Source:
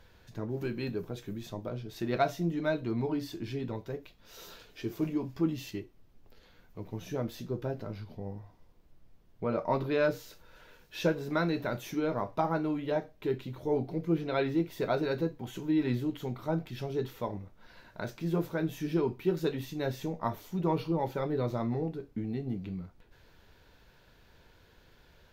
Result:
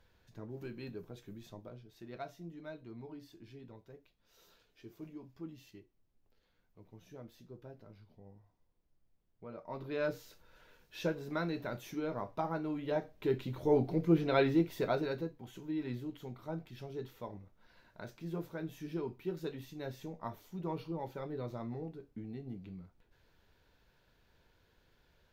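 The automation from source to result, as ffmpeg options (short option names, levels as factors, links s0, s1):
-af "volume=2.51,afade=t=out:st=1.52:d=0.4:silence=0.473151,afade=t=in:st=9.67:d=0.41:silence=0.316228,afade=t=in:st=12.64:d=1.04:silence=0.398107,afade=t=out:st=14.42:d=0.9:silence=0.281838"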